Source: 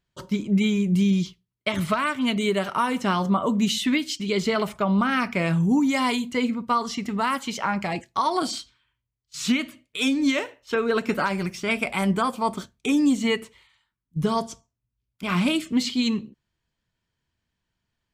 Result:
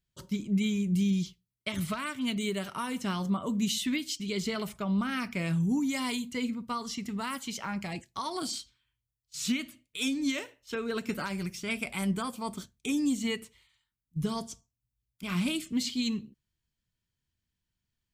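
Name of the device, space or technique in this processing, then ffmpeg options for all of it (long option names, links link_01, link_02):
smiley-face EQ: -af "lowshelf=frequency=170:gain=3.5,equalizer=frequency=800:width_type=o:width=2.5:gain=-7,highshelf=frequency=6500:gain=7.5,volume=-6.5dB"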